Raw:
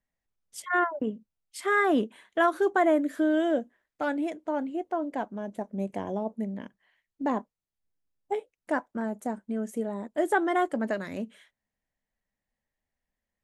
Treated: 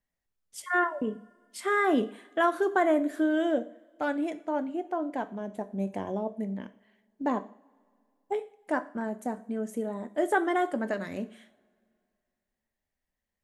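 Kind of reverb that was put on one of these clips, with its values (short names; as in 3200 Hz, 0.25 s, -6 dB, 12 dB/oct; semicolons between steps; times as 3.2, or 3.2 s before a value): two-slope reverb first 0.47 s, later 2.3 s, from -22 dB, DRR 10.5 dB; gain -1 dB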